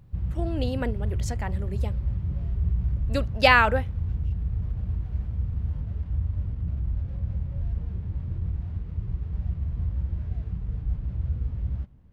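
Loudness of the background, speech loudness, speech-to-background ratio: -30.5 LUFS, -25.0 LUFS, 5.5 dB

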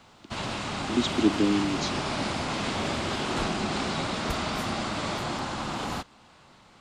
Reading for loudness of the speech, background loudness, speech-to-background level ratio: -27.5 LUFS, -30.0 LUFS, 2.5 dB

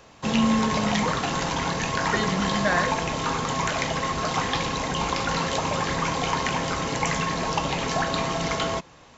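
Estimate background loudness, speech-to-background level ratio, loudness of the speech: -25.5 LUFS, -1.5 dB, -27.0 LUFS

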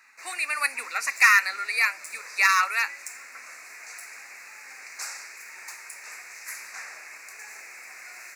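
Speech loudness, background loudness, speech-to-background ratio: -22.5 LUFS, -40.0 LUFS, 17.5 dB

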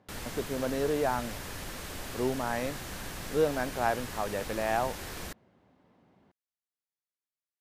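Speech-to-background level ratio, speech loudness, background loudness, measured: 8.0 dB, -32.0 LUFS, -40.0 LUFS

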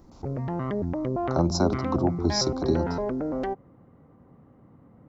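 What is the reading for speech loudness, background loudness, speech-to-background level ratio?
-27.5 LUFS, -30.0 LUFS, 2.5 dB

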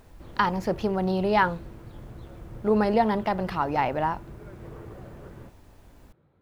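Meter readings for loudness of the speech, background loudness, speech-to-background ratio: -25.5 LUFS, -45.0 LUFS, 19.5 dB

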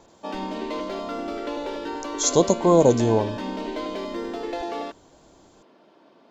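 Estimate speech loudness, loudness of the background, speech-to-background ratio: -20.0 LUFS, -31.0 LUFS, 11.0 dB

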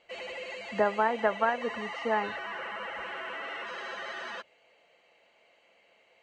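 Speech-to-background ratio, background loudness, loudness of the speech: 8.5 dB, -38.0 LUFS, -29.5 LUFS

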